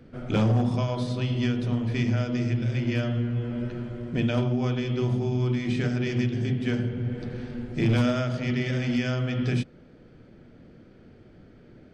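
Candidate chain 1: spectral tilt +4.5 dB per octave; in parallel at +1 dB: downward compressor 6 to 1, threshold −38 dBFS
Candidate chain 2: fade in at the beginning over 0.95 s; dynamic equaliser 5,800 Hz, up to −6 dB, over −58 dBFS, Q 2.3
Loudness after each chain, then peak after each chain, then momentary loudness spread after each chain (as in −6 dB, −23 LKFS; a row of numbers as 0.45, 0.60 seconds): −28.5, −27.5 LKFS; −8.5, −16.0 dBFS; 9, 7 LU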